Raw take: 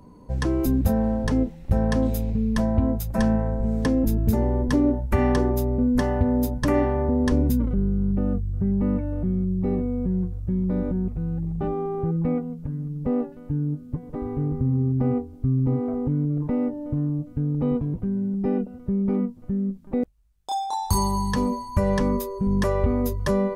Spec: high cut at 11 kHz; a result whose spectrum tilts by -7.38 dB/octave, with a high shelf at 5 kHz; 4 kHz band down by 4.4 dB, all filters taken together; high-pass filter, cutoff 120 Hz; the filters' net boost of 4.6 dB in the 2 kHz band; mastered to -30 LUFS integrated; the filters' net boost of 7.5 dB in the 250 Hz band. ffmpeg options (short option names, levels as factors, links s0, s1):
-af "highpass=120,lowpass=11000,equalizer=f=250:t=o:g=9,equalizer=f=2000:t=o:g=7,equalizer=f=4000:t=o:g=-3,highshelf=f=5000:g=-9,volume=0.282"